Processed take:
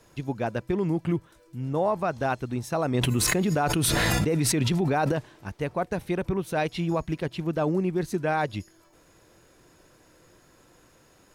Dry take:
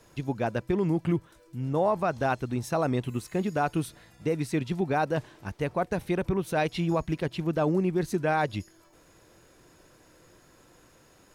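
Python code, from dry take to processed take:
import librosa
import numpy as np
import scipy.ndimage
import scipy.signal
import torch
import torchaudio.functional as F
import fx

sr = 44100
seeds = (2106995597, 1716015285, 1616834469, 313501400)

y = fx.env_flatten(x, sr, amount_pct=100, at=(2.94, 5.12))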